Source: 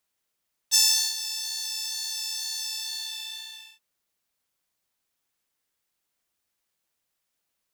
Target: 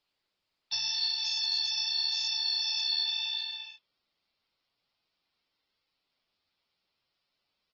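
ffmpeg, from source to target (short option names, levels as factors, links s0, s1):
-af "equalizer=f=1700:t=o:w=0.23:g=-7,acompressor=threshold=0.0501:ratio=6,aresample=16000,asoftclip=type=tanh:threshold=0.1,aresample=44100,crystalizer=i=1.5:c=0,flanger=delay=6.9:depth=5.6:regen=-50:speed=0.83:shape=sinusoidal,aresample=11025,aresample=44100,volume=2.11" -ar 48000 -c:a libopus -b:a 16k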